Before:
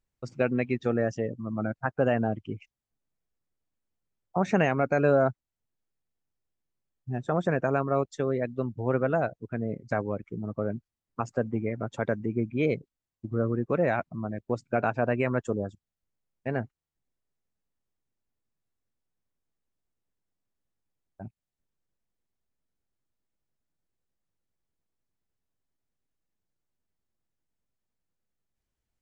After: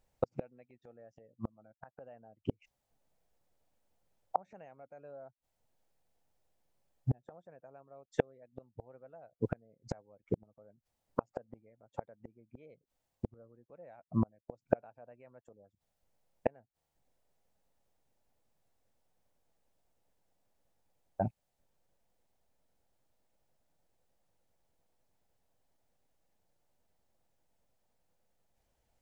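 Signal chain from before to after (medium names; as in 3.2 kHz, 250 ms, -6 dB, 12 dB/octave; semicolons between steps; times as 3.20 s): inverted gate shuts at -26 dBFS, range -41 dB; high-order bell 660 Hz +8.5 dB 1.1 oct; trim +6.5 dB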